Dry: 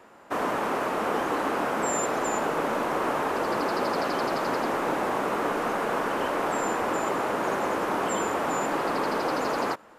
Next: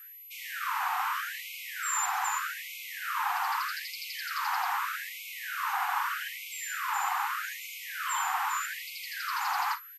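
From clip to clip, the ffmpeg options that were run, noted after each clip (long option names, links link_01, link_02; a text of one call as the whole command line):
ffmpeg -i in.wav -af "aecho=1:1:39|53:0.251|0.141,aeval=exprs='val(0)+0.00501*sin(2*PI*12000*n/s)':channel_layout=same,afftfilt=real='re*gte(b*sr/1024,690*pow(2100/690,0.5+0.5*sin(2*PI*0.81*pts/sr)))':imag='im*gte(b*sr/1024,690*pow(2100/690,0.5+0.5*sin(2*PI*0.81*pts/sr)))':win_size=1024:overlap=0.75" out.wav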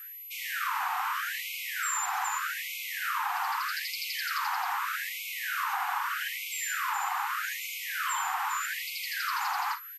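ffmpeg -i in.wav -af "acompressor=threshold=-32dB:ratio=6,volume=4.5dB" out.wav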